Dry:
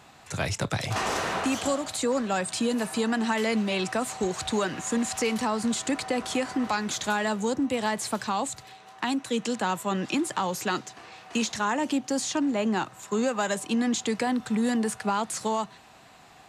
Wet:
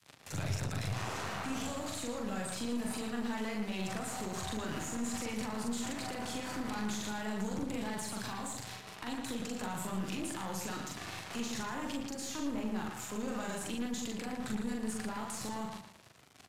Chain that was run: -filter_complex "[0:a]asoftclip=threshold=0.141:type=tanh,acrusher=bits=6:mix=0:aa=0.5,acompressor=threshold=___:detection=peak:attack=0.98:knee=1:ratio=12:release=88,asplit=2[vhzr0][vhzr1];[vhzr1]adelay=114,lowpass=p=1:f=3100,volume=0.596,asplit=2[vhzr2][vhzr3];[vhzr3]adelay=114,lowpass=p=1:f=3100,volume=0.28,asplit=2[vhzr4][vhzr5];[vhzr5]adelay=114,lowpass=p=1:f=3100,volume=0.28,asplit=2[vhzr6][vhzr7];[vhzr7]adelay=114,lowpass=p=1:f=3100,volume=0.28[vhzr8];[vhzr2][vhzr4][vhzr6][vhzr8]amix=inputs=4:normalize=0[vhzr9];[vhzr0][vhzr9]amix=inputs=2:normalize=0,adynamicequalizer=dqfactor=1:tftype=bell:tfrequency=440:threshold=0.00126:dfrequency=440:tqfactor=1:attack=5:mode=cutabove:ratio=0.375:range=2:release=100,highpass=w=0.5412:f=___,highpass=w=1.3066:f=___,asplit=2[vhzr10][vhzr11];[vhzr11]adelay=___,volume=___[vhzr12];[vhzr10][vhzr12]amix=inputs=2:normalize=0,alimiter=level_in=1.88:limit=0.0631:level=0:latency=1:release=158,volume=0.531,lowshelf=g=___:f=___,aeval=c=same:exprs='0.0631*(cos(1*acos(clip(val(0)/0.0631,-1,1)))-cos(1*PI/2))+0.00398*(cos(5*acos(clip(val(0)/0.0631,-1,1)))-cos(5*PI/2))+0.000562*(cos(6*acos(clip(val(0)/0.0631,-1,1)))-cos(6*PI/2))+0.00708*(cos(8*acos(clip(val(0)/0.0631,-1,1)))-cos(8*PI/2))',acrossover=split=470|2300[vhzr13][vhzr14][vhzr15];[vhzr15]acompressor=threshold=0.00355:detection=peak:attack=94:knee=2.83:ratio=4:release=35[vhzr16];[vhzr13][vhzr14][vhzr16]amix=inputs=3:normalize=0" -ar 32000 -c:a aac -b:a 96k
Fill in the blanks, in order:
0.01, 73, 73, 42, 0.794, 10, 180